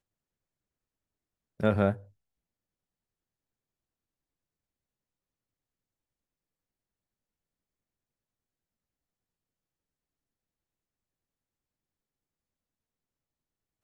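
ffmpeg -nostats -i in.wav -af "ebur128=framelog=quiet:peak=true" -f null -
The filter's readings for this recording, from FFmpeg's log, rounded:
Integrated loudness:
  I:         -28.2 LUFS
  Threshold: -39.4 LUFS
Loudness range:
  LRA:         3.2 LU
  Threshold: -55.8 LUFS
  LRA low:   -38.4 LUFS
  LRA high:  -35.1 LUFS
True peak:
  Peak:      -11.3 dBFS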